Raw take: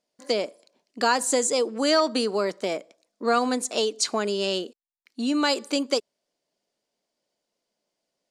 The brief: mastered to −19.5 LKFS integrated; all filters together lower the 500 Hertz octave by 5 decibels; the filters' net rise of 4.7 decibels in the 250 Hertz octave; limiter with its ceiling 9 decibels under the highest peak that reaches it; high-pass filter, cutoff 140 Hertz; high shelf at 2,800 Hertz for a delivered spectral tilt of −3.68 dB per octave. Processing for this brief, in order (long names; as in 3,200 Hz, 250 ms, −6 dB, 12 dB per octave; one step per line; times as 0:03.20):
high-pass filter 140 Hz
parametric band 250 Hz +8 dB
parametric band 500 Hz −8 dB
high-shelf EQ 2,800 Hz −5.5 dB
level +10.5 dB
brickwall limiter −10 dBFS